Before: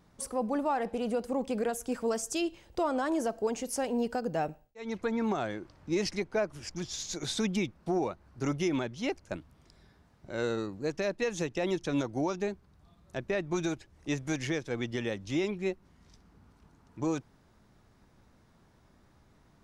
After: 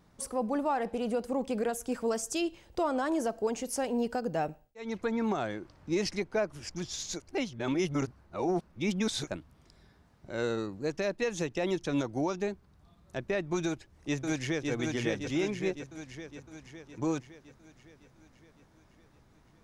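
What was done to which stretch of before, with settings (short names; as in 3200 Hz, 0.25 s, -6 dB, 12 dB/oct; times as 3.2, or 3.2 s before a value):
7.2–9.27 reverse
13.67–14.71 echo throw 0.56 s, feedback 60%, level -3 dB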